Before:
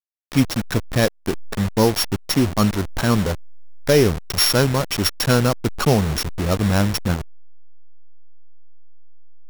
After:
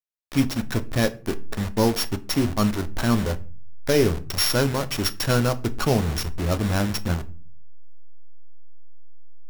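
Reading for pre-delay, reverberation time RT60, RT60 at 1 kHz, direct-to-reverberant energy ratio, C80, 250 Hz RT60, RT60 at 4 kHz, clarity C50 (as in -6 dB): 3 ms, 0.40 s, 0.35 s, 10.0 dB, 24.0 dB, 0.60 s, 0.25 s, 19.5 dB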